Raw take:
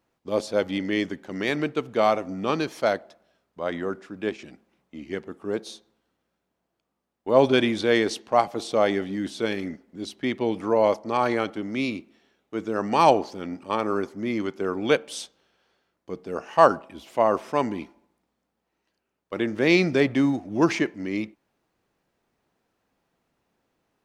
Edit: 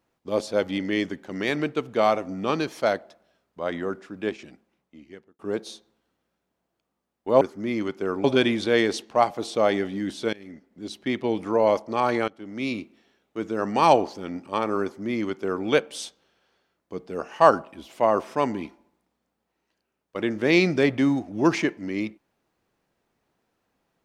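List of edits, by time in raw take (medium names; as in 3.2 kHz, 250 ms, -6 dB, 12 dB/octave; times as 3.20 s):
4.29–5.39 s: fade out
9.50–10.14 s: fade in, from -22.5 dB
11.45–11.92 s: fade in, from -21.5 dB
14.00–14.83 s: copy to 7.41 s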